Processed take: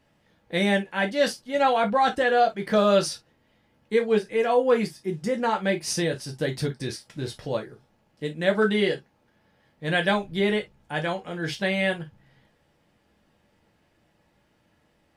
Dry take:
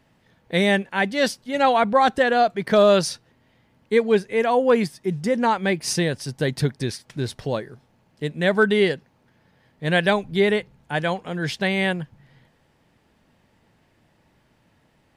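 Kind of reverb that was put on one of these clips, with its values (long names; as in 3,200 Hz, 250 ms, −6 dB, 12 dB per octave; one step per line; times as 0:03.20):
reverb whose tail is shaped and stops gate 80 ms falling, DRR 2 dB
level −5.5 dB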